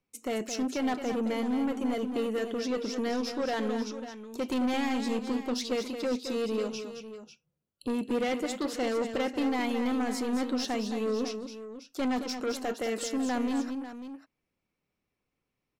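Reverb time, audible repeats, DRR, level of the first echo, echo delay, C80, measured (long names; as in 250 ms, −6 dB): no reverb audible, 2, no reverb audible, −8.5 dB, 218 ms, no reverb audible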